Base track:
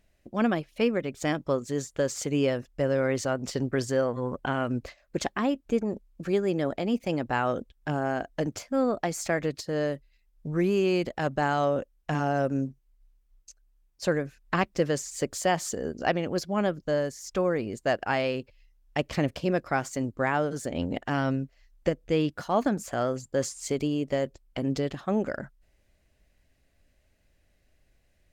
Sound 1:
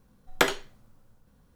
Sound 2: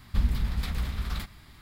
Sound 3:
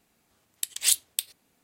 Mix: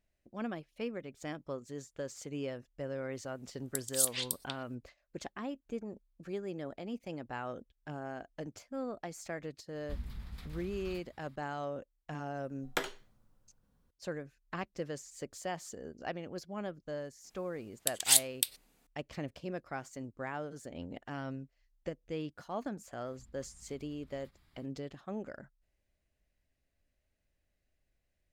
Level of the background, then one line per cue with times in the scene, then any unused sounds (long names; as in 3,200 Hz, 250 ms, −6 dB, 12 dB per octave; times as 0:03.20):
base track −13.5 dB
0:03.12: mix in 3 −6 dB + multiband delay without the direct sound highs, lows 190 ms, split 4,500 Hz
0:09.75: mix in 2 −16 dB
0:12.36: mix in 1 −11.5 dB
0:17.24: mix in 3 −2 dB
0:23.05: mix in 2 −17.5 dB + downward compressor 5 to 1, threshold −41 dBFS